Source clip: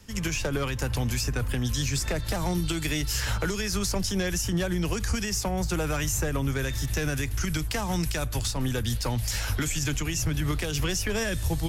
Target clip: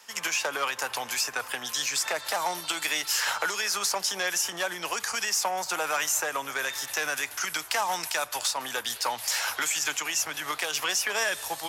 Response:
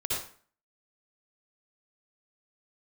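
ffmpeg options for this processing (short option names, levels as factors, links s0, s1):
-filter_complex "[0:a]asplit=2[s0][s1];[1:a]atrim=start_sample=2205,lowpass=8200,adelay=147[s2];[s1][s2]afir=irnorm=-1:irlink=0,volume=0.0355[s3];[s0][s3]amix=inputs=2:normalize=0,aeval=exprs='0.15*(cos(1*acos(clip(val(0)/0.15,-1,1)))-cos(1*PI/2))+0.00376*(cos(5*acos(clip(val(0)/0.15,-1,1)))-cos(5*PI/2))':c=same,highpass=f=840:t=q:w=1.5,volume=1.41"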